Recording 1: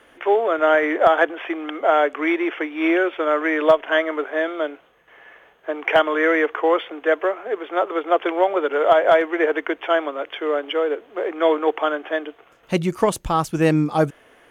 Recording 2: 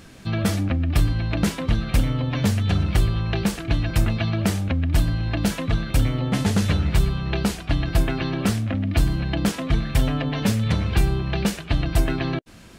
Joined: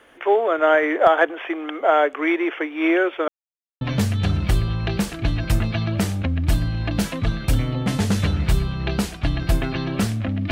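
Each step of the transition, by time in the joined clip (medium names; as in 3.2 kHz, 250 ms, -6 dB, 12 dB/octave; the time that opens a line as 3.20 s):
recording 1
3.28–3.81 s: mute
3.81 s: go over to recording 2 from 2.27 s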